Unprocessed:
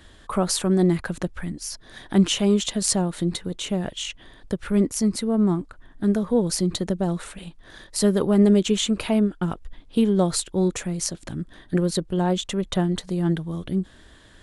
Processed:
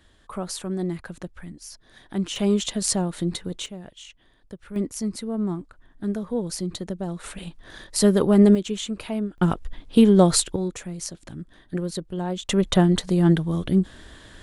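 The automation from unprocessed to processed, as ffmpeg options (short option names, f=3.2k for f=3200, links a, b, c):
-af "asetnsamples=n=441:p=0,asendcmd='2.36 volume volume -1.5dB;3.66 volume volume -13dB;4.76 volume volume -6dB;7.24 volume volume 2dB;8.55 volume volume -7dB;9.38 volume volume 5dB;10.56 volume volume -6dB;12.49 volume volume 5dB',volume=-8.5dB"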